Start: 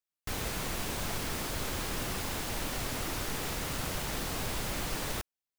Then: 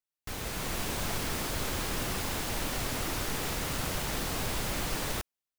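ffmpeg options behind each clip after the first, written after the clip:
ffmpeg -i in.wav -af "dynaudnorm=framelen=380:gausssize=3:maxgain=5dB,volume=-3dB" out.wav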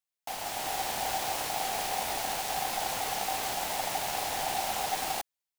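ffmpeg -i in.wav -af "equalizer=frequency=470:width=0.68:gain=-9,aeval=exprs='val(0)*sin(2*PI*770*n/s)':channel_layout=same,volume=4.5dB" out.wav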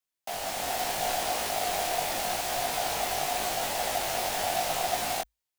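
ffmpeg -i in.wav -af "flanger=delay=17.5:depth=3.9:speed=0.82,afreqshift=-52,volume=5.5dB" out.wav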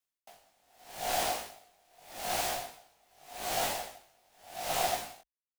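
ffmpeg -i in.wav -af "aeval=exprs='val(0)*pow(10,-38*(0.5-0.5*cos(2*PI*0.83*n/s))/20)':channel_layout=same" out.wav

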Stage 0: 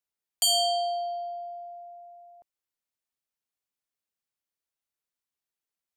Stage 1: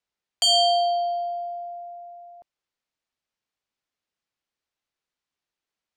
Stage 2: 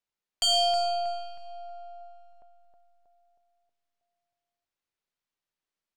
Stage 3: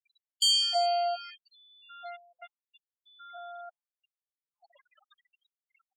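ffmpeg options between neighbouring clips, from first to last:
ffmpeg -i in.wav -af "lowpass=5300,volume=6.5dB" out.wav
ffmpeg -i in.wav -filter_complex "[0:a]aeval=exprs='if(lt(val(0),0),0.708*val(0),val(0))':channel_layout=same,asplit=2[link_01][link_02];[link_02]adelay=318,lowpass=frequency=2100:poles=1,volume=-5.5dB,asplit=2[link_03][link_04];[link_04]adelay=318,lowpass=frequency=2100:poles=1,volume=0.53,asplit=2[link_05][link_06];[link_06]adelay=318,lowpass=frequency=2100:poles=1,volume=0.53,asplit=2[link_07][link_08];[link_08]adelay=318,lowpass=frequency=2100:poles=1,volume=0.53,asplit=2[link_09][link_10];[link_10]adelay=318,lowpass=frequency=2100:poles=1,volume=0.53,asplit=2[link_11][link_12];[link_12]adelay=318,lowpass=frequency=2100:poles=1,volume=0.53,asplit=2[link_13][link_14];[link_14]adelay=318,lowpass=frequency=2100:poles=1,volume=0.53[link_15];[link_03][link_05][link_07][link_09][link_11][link_13][link_15]amix=inputs=7:normalize=0[link_16];[link_01][link_16]amix=inputs=2:normalize=0,volume=-3.5dB" out.wav
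ffmpeg -i in.wav -af "aeval=exprs='val(0)+0.5*0.0168*sgn(val(0))':channel_layout=same,afftfilt=real='re*gte(hypot(re,im),0.0158)':imag='im*gte(hypot(re,im),0.0158)':win_size=1024:overlap=0.75,afftfilt=real='re*gte(b*sr/1024,440*pow(3400/440,0.5+0.5*sin(2*PI*0.77*pts/sr)))':imag='im*gte(b*sr/1024,440*pow(3400/440,0.5+0.5*sin(2*PI*0.77*pts/sr)))':win_size=1024:overlap=0.75" out.wav

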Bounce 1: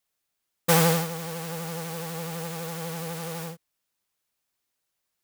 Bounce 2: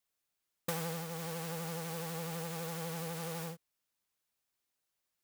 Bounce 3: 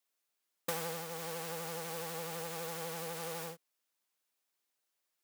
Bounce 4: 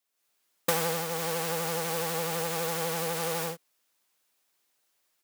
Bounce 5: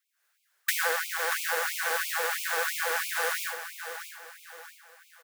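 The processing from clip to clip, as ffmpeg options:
ffmpeg -i in.wav -af "acompressor=threshold=-29dB:ratio=8,volume=-5dB" out.wav
ffmpeg -i in.wav -af "highpass=260,volume=1dB" out.wav
ffmpeg -i in.wav -af "dynaudnorm=framelen=130:gausssize=3:maxgain=8.5dB,volume=1.5dB" out.wav
ffmpeg -i in.wav -af "equalizer=frequency=1600:width_type=o:width=0.64:gain=14,aecho=1:1:633|1266|1899|2532:0.316|0.13|0.0532|0.0218,afftfilt=real='re*gte(b*sr/1024,340*pow(2200/340,0.5+0.5*sin(2*PI*3*pts/sr)))':imag='im*gte(b*sr/1024,340*pow(2200/340,0.5+0.5*sin(2*PI*3*pts/sr)))':win_size=1024:overlap=0.75" out.wav

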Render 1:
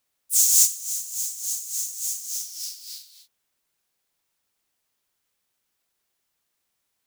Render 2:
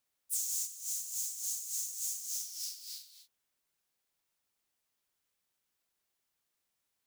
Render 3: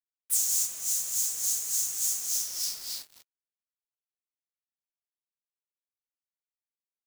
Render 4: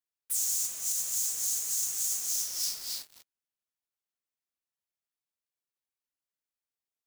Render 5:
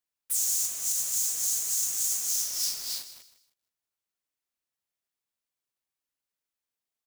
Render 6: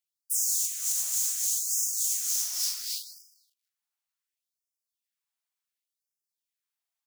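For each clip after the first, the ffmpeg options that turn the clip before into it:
ffmpeg -i in.wav -af "acompressor=threshold=-25dB:ratio=16,volume=-6.5dB" out.wav
ffmpeg -i in.wav -af "acrusher=bits=7:mix=0:aa=0.5,volume=8.5dB" out.wav
ffmpeg -i in.wav -af "alimiter=limit=-20dB:level=0:latency=1:release=20" out.wav
ffmpeg -i in.wav -af "aecho=1:1:157|314|471:0.211|0.0634|0.019,volume=2.5dB" out.wav
ffmpeg -i in.wav -af "afftfilt=real='re*gte(b*sr/1024,600*pow(4900/600,0.5+0.5*sin(2*PI*0.69*pts/sr)))':imag='im*gte(b*sr/1024,600*pow(4900/600,0.5+0.5*sin(2*PI*0.69*pts/sr)))':win_size=1024:overlap=0.75" out.wav

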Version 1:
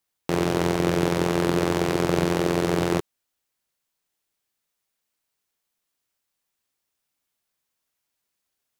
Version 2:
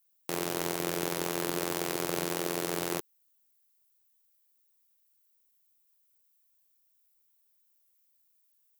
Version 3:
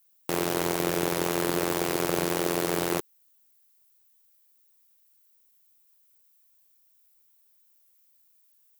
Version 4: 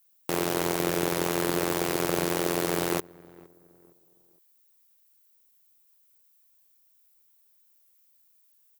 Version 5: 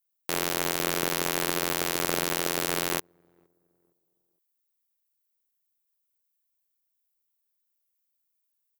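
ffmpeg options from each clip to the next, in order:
ffmpeg -i in.wav -af "aemphasis=mode=production:type=bsi,volume=-8.5dB" out.wav
ffmpeg -i in.wav -af "volume=17.5dB,asoftclip=hard,volume=-17.5dB,volume=6.5dB" out.wav
ffmpeg -i in.wav -filter_complex "[0:a]asplit=2[link_01][link_02];[link_02]adelay=462,lowpass=frequency=1100:poles=1,volume=-22.5dB,asplit=2[link_03][link_04];[link_04]adelay=462,lowpass=frequency=1100:poles=1,volume=0.41,asplit=2[link_05][link_06];[link_06]adelay=462,lowpass=frequency=1100:poles=1,volume=0.41[link_07];[link_01][link_03][link_05][link_07]amix=inputs=4:normalize=0" out.wav
ffmpeg -i in.wav -af "aeval=exprs='0.299*(cos(1*acos(clip(val(0)/0.299,-1,1)))-cos(1*PI/2))+0.0944*(cos(3*acos(clip(val(0)/0.299,-1,1)))-cos(3*PI/2))+0.0119*(cos(5*acos(clip(val(0)/0.299,-1,1)))-cos(5*PI/2))+0.00473*(cos(7*acos(clip(val(0)/0.299,-1,1)))-cos(7*PI/2))':channel_layout=same,volume=3dB" out.wav

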